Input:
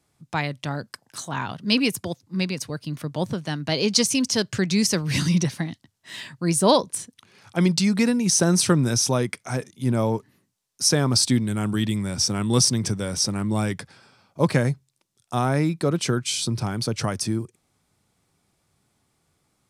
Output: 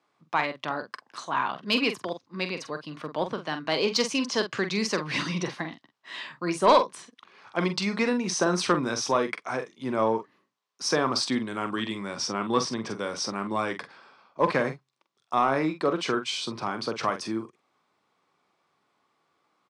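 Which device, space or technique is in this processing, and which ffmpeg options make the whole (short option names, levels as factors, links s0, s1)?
intercom: -filter_complex "[0:a]highpass=340,lowpass=3600,equalizer=f=1100:t=o:w=0.4:g=8,asoftclip=type=tanh:threshold=0.316,asplit=2[s0][s1];[s1]adelay=45,volume=0.355[s2];[s0][s2]amix=inputs=2:normalize=0,asettb=1/sr,asplit=3[s3][s4][s5];[s3]atrim=end=12.314[s6];[s4]atrim=start=12.31:end=12.89,asetpts=PTS-STARTPTS,afade=t=in:d=0.004:c=qsin,afade=t=out:st=0.576:d=0.004:c=qsin,aemphasis=mode=reproduction:type=cd[s7];[s5]atrim=start=12.886[s8];[s6][s7]acrossfade=d=0.004:c1=hsin:c2=qsin[s9];[s9][s8]acrossfade=d=0.004:c1=qsin:c2=hsin"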